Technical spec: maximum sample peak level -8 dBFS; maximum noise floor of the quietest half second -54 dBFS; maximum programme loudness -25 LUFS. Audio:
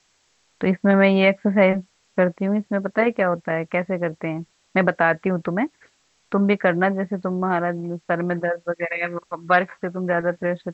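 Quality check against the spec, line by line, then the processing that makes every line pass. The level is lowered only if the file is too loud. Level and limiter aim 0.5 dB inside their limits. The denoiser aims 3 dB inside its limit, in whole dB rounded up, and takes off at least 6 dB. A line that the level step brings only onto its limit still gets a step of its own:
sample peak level -3.5 dBFS: fail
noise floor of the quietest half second -64 dBFS: OK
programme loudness -22.0 LUFS: fail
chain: gain -3.5 dB; limiter -8.5 dBFS

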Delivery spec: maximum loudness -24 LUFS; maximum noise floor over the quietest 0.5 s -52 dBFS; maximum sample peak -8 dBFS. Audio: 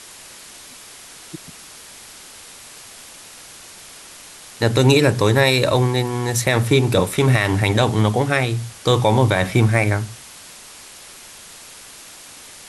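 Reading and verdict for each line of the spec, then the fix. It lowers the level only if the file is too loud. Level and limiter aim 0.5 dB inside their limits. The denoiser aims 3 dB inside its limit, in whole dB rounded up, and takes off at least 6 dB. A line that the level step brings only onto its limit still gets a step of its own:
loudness -17.5 LUFS: fail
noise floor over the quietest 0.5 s -41 dBFS: fail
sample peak -3.5 dBFS: fail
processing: denoiser 7 dB, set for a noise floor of -41 dBFS; gain -7 dB

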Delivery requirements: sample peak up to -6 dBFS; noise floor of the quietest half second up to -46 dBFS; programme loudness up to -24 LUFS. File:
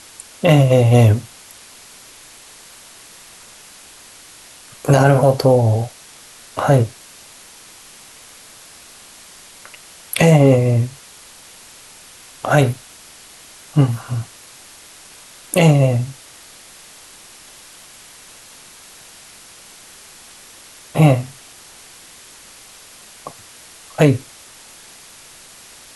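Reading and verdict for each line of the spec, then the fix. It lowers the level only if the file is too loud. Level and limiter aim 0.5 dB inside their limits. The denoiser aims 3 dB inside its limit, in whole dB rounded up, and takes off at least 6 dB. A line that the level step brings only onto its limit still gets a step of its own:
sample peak -2.0 dBFS: fail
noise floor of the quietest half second -42 dBFS: fail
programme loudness -15.5 LUFS: fail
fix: gain -9 dB

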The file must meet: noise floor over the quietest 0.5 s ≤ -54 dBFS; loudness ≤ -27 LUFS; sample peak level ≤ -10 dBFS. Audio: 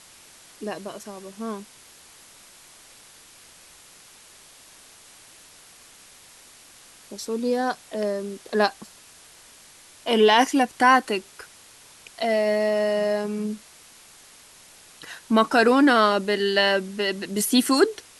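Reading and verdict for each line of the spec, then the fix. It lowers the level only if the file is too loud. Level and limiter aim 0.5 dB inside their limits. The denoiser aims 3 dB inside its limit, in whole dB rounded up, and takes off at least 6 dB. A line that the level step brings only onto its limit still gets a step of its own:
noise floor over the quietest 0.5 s -50 dBFS: fail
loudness -22.0 LUFS: fail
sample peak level -6.0 dBFS: fail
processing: gain -5.5 dB

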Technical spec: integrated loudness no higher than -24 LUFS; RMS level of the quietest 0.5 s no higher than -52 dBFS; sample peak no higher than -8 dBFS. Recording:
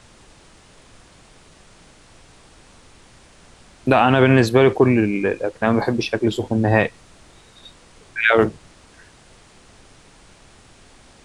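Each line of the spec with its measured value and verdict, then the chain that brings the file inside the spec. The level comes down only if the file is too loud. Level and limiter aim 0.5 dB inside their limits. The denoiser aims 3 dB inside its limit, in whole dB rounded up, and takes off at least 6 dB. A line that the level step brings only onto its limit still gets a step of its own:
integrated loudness -18.0 LUFS: fail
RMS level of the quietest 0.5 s -49 dBFS: fail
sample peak -2.5 dBFS: fail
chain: gain -6.5 dB

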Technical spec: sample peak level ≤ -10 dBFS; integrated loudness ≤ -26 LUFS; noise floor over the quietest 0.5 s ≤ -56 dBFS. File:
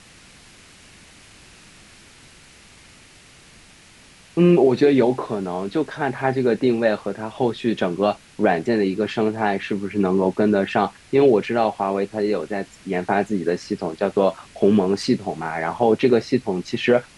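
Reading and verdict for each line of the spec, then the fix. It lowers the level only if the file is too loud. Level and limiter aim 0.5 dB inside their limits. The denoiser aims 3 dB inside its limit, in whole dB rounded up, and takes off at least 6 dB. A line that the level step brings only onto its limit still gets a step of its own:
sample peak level -5.5 dBFS: fail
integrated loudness -21.0 LUFS: fail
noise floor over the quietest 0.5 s -49 dBFS: fail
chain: denoiser 6 dB, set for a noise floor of -49 dBFS; gain -5.5 dB

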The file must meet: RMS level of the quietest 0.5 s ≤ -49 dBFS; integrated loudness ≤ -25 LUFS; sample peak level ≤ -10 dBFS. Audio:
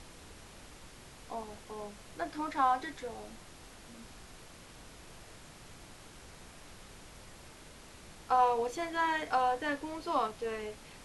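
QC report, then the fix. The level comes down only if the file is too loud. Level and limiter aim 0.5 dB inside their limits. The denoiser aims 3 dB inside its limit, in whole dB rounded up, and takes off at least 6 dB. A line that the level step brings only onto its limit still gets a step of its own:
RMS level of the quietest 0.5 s -53 dBFS: OK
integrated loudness -33.5 LUFS: OK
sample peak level -16.5 dBFS: OK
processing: none

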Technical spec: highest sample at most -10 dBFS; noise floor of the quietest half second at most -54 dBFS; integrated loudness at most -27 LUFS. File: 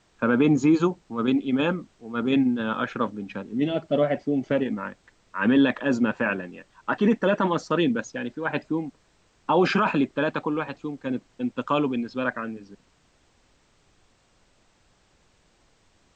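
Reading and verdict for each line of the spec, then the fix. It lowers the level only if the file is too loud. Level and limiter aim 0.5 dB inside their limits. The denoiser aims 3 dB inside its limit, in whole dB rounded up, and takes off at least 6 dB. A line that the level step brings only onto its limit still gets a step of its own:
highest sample -9.5 dBFS: fail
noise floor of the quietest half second -63 dBFS: OK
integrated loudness -25.0 LUFS: fail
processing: gain -2.5 dB

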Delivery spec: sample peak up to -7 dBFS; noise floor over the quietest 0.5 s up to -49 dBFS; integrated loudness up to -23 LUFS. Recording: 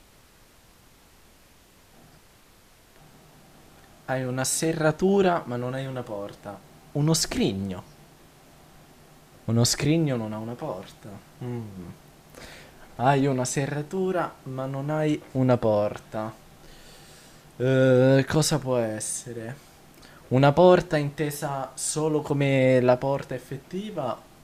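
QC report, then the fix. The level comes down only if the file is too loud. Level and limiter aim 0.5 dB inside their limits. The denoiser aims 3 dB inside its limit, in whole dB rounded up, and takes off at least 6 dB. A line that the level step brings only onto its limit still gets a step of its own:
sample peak -5.5 dBFS: fail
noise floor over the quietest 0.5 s -55 dBFS: OK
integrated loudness -24.5 LUFS: OK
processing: limiter -7.5 dBFS

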